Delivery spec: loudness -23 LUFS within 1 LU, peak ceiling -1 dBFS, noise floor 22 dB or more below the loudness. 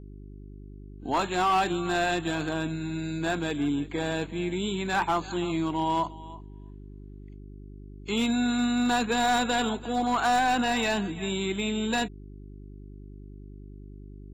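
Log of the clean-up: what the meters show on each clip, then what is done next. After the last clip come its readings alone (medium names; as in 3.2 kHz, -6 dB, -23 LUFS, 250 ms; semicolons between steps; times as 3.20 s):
clipped samples 1.4%; clipping level -19.5 dBFS; hum 50 Hz; highest harmonic 400 Hz; hum level -41 dBFS; loudness -27.5 LUFS; peak level -19.5 dBFS; loudness target -23.0 LUFS
-> clip repair -19.5 dBFS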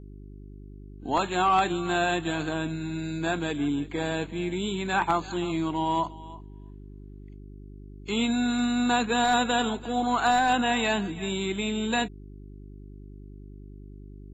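clipped samples 0.0%; hum 50 Hz; highest harmonic 400 Hz; hum level -41 dBFS
-> de-hum 50 Hz, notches 8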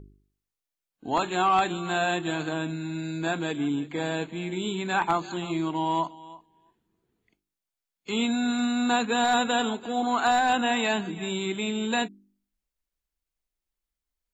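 hum not found; loudness -27.0 LUFS; peak level -10.5 dBFS; loudness target -23.0 LUFS
-> trim +4 dB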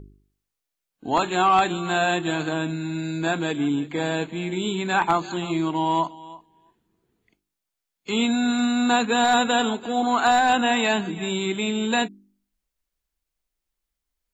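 loudness -23.0 LUFS; peak level -6.5 dBFS; noise floor -84 dBFS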